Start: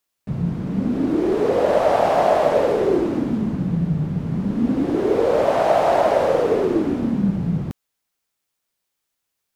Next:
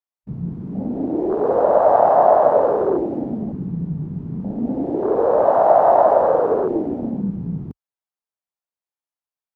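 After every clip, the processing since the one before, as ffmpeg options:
-af "afwtdn=0.0708,equalizer=f=820:t=o:w=1.7:g=10.5,volume=-5dB"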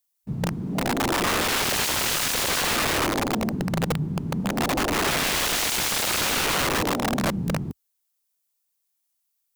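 -af "asoftclip=type=hard:threshold=-12.5dB,crystalizer=i=6:c=0,aeval=exprs='(mod(8.41*val(0)+1,2)-1)/8.41':c=same"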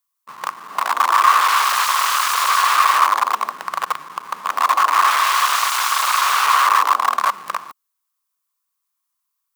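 -filter_complex "[0:a]aeval=exprs='(tanh(12.6*val(0)+0.65)-tanh(0.65))/12.6':c=same,asplit=2[a][b];[b]acrusher=bits=5:mix=0:aa=0.000001,volume=-6dB[c];[a][c]amix=inputs=2:normalize=0,highpass=f=1.1k:t=q:w=8.7,volume=2dB"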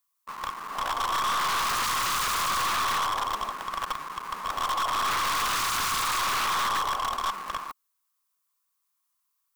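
-af "aeval=exprs='(tanh(17.8*val(0)+0.2)-tanh(0.2))/17.8':c=same"

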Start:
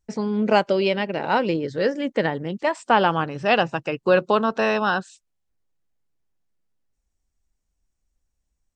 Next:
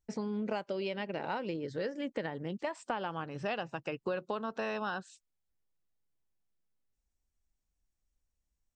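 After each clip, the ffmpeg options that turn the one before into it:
-af "acompressor=threshold=-25dB:ratio=6,volume=-7.5dB"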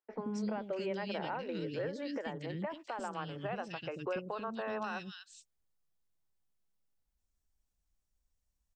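-filter_complex "[0:a]acrossover=split=340|2300[a][b][c];[a]adelay=90[d];[c]adelay=250[e];[d][b][e]amix=inputs=3:normalize=0,alimiter=level_in=4.5dB:limit=-24dB:level=0:latency=1:release=185,volume=-4.5dB,volume=1dB"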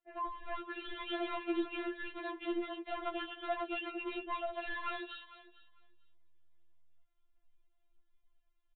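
-af "aresample=8000,asoftclip=type=hard:threshold=-36.5dB,aresample=44100,aecho=1:1:449|898:0.126|0.0201,afftfilt=real='re*4*eq(mod(b,16),0)':imag='im*4*eq(mod(b,16),0)':win_size=2048:overlap=0.75,volume=8dB"

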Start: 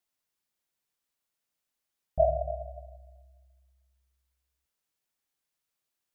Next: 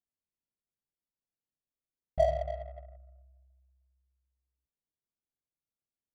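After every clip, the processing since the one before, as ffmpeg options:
-af "adynamicsmooth=sensitivity=6.5:basefreq=500,volume=-2dB"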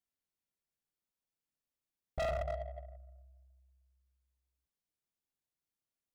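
-af "volume=32dB,asoftclip=hard,volume=-32dB"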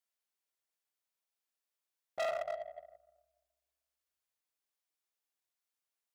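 -af "highpass=530,volume=2dB"

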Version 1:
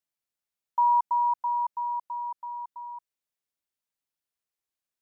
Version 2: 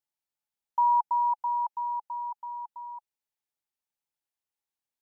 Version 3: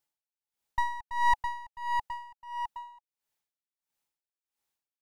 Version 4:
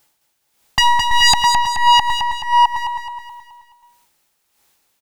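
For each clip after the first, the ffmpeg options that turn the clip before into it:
-af "equalizer=f=850:t=o:w=0.24:g=9,volume=-4dB"
-af "aeval=exprs='clip(val(0),-1,0.01)':c=same,aeval=exprs='val(0)*pow(10,-21*(0.5-0.5*cos(2*PI*1.5*n/s))/20)':c=same,volume=7.5dB"
-filter_complex "[0:a]aeval=exprs='0.2*sin(PI/2*4.47*val(0)/0.2)':c=same,asplit=2[a][b];[b]aecho=0:1:213|426|639|852|1065:0.501|0.226|0.101|0.0457|0.0206[c];[a][c]amix=inputs=2:normalize=0,volume=7.5dB"

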